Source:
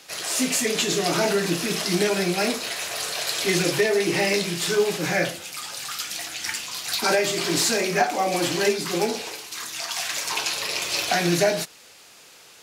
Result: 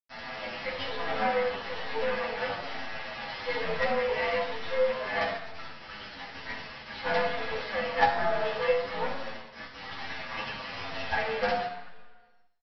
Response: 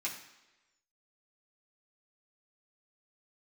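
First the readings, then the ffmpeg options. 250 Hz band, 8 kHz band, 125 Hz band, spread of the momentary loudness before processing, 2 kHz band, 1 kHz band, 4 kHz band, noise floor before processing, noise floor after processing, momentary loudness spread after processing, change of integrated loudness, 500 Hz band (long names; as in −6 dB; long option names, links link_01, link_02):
−15.5 dB, below −35 dB, −14.0 dB, 8 LU, −5.5 dB, −2.5 dB, −13.0 dB, −49 dBFS, −49 dBFS, 13 LU, −7.5 dB, −6.0 dB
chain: -filter_complex "[0:a]highpass=frequency=360:width_type=q:width=0.5412,highpass=frequency=360:width_type=q:width=1.307,lowpass=frequency=3600:width_type=q:width=0.5176,lowpass=frequency=3600:width_type=q:width=0.7071,lowpass=frequency=3600:width_type=q:width=1.932,afreqshift=99,aresample=11025,acrusher=bits=3:dc=4:mix=0:aa=0.000001,aresample=44100,highshelf=frequency=2800:gain=-11.5[link_01];[1:a]atrim=start_sample=2205,asetrate=34839,aresample=44100[link_02];[link_01][link_02]afir=irnorm=-1:irlink=0,asplit=2[link_03][link_04];[link_04]adelay=8.4,afreqshift=-1.1[link_05];[link_03][link_05]amix=inputs=2:normalize=1"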